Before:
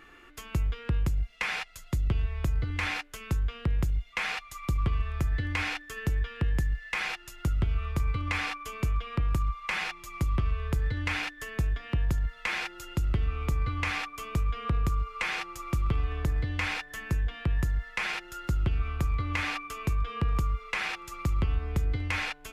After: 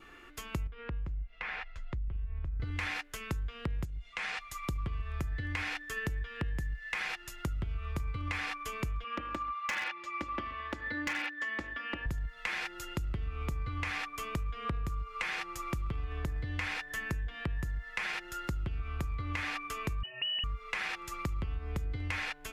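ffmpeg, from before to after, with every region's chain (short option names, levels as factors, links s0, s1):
-filter_complex "[0:a]asettb=1/sr,asplit=3[s0][s1][s2];[s0]atrim=end=0.674[s3];[s1]atrim=start=0.67:end=2.6,asetpts=PTS-STARTPTS,afade=t=in:d=0.004:c=qsin,afade=t=out:st=1.926:d=0.004:c=qsin,asubboost=boost=11.5:cutoff=65,lowpass=2400,acompressor=threshold=0.0126:ratio=2.5:attack=3.2:release=140:knee=1:detection=peak[s4];[s2]atrim=start=2.596[s5];[s3][s4]acrossfade=d=0.004:c1=hsin:c2=qsin[s6];[s6][s5]acrossfade=d=0.004:c1=qsin:c2=hsin,asettb=1/sr,asplit=3[s7][s8][s9];[s7]atrim=end=3.854[s10];[s8]atrim=start=3.85:end=4.41,asetpts=PTS-STARTPTS,afade=t=in:d=0.004:c=qsin,afade=t=out:st=0.556:d=0.004:c=qsin,lowpass=f=10000:w=0.5412,lowpass=f=10000:w=1.3066,acompressor=threshold=0.0224:ratio=4:attack=3.2:release=140:knee=1:detection=peak[s11];[s9]atrim=start=4.406[s12];[s10][s11]acrossfade=d=0.004:c1=hsin:c2=qsin[s13];[s13][s12]acrossfade=d=0.004:c1=qsin:c2=hsin,asettb=1/sr,asplit=3[s14][s15][s16];[s14]atrim=end=9.044[s17];[s15]atrim=start=9.04:end=12.06,asetpts=PTS-STARTPTS,afade=t=in:d=0.004:c=qsin,afade=t=out:st=3.016:d=0.004:c=qsin,highpass=250,lowpass=3500,aecho=1:1:3.5:0.83,atrim=end_sample=133182,aeval=exprs='0.0668*(abs(mod(val(0)/0.0668+3,4)-2)-1)':c=same[s18];[s16]atrim=start=12.056[s19];[s17][s18]acrossfade=d=0.004:c1=hsin:c2=qsin[s20];[s20][s19]acrossfade=d=0.004:c1=qsin:c2=hsin,asettb=1/sr,asplit=3[s21][s22][s23];[s21]atrim=end=20.034[s24];[s22]atrim=start=20.03:end=20.44,asetpts=PTS-STARTPTS,afade=t=in:d=0.004:c=qsin,afade=t=out:st=0.406:d=0.004:c=qsin,lowpass=f=2600:t=q:w=0.5098,lowpass=f=2600:t=q:w=0.6013,lowpass=f=2600:t=q:w=0.9,lowpass=f=2600:t=q:w=2.563,afreqshift=-3000,equalizer=f=1500:t=o:w=1.1:g=-14[s25];[s23]atrim=start=20.436[s26];[s24][s25]acrossfade=d=0.004:c1=hsin:c2=qsin[s27];[s27][s26]acrossfade=d=0.004:c1=qsin:c2=hsin,adynamicequalizer=threshold=0.00398:dfrequency=1800:dqfactor=4.4:tfrequency=1800:tqfactor=4.4:attack=5:release=100:ratio=0.375:range=2:mode=boostabove:tftype=bell,acompressor=threshold=0.0251:ratio=6"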